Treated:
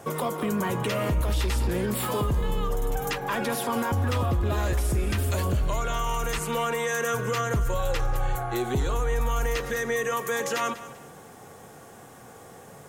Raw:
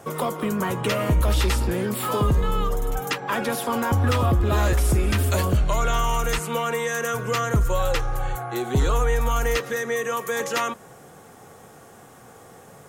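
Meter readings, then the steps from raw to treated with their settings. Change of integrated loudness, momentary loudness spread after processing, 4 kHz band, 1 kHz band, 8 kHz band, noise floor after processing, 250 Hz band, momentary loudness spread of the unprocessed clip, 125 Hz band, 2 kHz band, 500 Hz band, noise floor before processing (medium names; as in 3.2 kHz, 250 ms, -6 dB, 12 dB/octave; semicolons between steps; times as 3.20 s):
-3.5 dB, 21 LU, -4.0 dB, -3.5 dB, -3.0 dB, -47 dBFS, -3.5 dB, 6 LU, -4.5 dB, -3.0 dB, -3.0 dB, -47 dBFS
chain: band-stop 1.3 kHz, Q 18; peak limiter -19 dBFS, peak gain reduction 7.5 dB; bit-crushed delay 195 ms, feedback 35%, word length 9-bit, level -15 dB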